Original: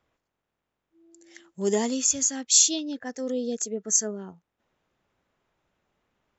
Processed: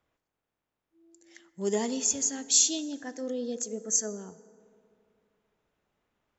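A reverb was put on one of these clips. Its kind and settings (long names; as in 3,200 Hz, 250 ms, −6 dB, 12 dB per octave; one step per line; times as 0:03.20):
feedback delay network reverb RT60 2.6 s, high-frequency decay 0.4×, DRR 13.5 dB
level −4 dB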